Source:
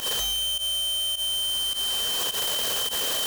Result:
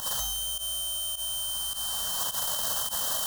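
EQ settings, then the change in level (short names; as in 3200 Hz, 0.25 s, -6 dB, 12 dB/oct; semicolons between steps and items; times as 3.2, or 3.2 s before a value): fixed phaser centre 970 Hz, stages 4; 0.0 dB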